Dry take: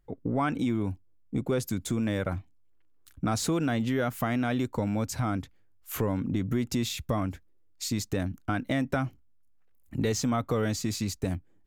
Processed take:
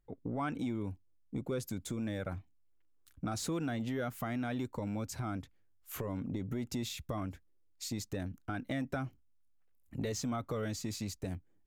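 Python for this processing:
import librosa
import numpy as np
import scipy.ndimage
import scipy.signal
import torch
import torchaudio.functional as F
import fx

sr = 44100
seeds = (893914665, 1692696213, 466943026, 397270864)

y = fx.transformer_sat(x, sr, knee_hz=210.0)
y = y * librosa.db_to_amplitude(-7.5)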